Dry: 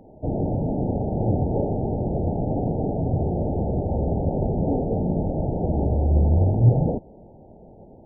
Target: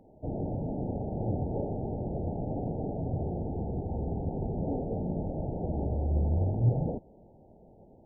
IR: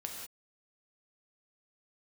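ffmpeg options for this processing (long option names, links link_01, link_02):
-filter_complex "[0:a]asettb=1/sr,asplit=3[link_01][link_02][link_03];[link_01]atrim=end=3.384[link_04];[link_02]atrim=start=3.38:end=4.55,asetpts=PTS-STARTPTS,afade=type=in:duration=0.004:curve=qsin,afade=type=out:start_time=1.166:duration=0.004:curve=qsin,equalizer=frequency=580:width=7:gain=-9.5[link_05];[link_03]atrim=start=4.546[link_06];[link_04][link_05]acrossfade=duration=0.004:curve1=hsin:curve2=qsin[link_07];[link_07][link_06]acrossfade=duration=0.004:curve1=qsin:curve2=hsin,volume=-9dB"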